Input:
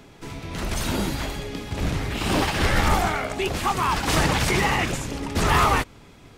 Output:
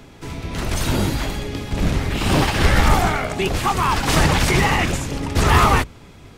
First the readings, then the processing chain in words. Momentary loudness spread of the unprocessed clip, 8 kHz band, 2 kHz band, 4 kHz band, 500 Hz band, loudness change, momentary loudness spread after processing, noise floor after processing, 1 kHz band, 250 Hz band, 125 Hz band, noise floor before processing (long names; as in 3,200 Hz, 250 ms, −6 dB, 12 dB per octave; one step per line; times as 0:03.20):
11 LU, +3.5 dB, +3.5 dB, +3.5 dB, +4.0 dB, +4.5 dB, 11 LU, −44 dBFS, +3.5 dB, +4.5 dB, +6.5 dB, −48 dBFS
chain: sub-octave generator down 1 octave, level 0 dB
level +3.5 dB